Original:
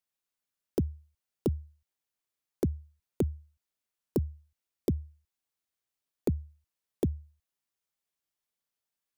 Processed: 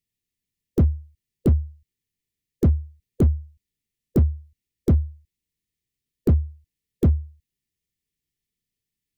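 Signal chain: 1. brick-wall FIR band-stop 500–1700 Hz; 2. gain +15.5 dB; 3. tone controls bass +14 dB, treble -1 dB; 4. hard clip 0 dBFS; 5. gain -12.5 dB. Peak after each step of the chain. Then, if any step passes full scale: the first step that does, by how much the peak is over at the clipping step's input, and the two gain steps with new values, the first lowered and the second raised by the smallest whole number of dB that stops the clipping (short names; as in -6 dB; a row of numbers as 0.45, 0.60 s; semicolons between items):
-18.0, -2.5, +6.0, 0.0, -12.5 dBFS; step 3, 6.0 dB; step 2 +9.5 dB, step 5 -6.5 dB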